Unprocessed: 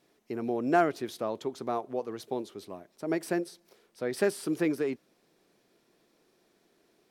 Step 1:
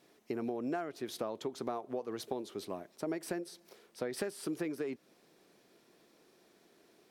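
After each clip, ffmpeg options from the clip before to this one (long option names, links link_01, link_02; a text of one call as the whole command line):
ffmpeg -i in.wav -af "lowshelf=frequency=64:gain=-10.5,acompressor=threshold=-36dB:ratio=16,volume=3dB" out.wav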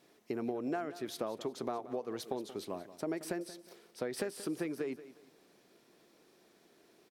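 ffmpeg -i in.wav -af "aecho=1:1:180|360|540:0.178|0.0533|0.016" out.wav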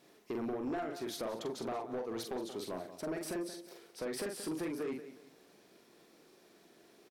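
ffmpeg -i in.wav -filter_complex "[0:a]asplit=2[link_01][link_02];[link_02]adelay=44,volume=-5dB[link_03];[link_01][link_03]amix=inputs=2:normalize=0,asoftclip=type=tanh:threshold=-33.5dB,volume=1.5dB" out.wav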